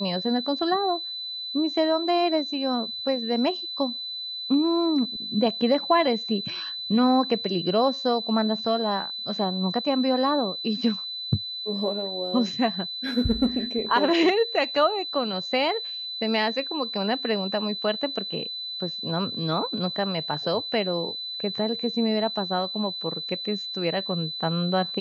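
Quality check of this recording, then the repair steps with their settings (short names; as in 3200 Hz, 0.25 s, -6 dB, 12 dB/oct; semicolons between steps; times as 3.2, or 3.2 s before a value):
tone 4000 Hz -31 dBFS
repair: notch 4000 Hz, Q 30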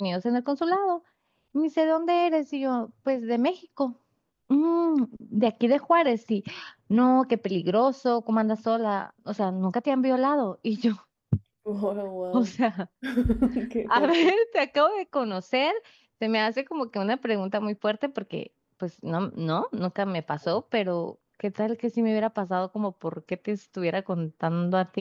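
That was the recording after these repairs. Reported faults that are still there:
none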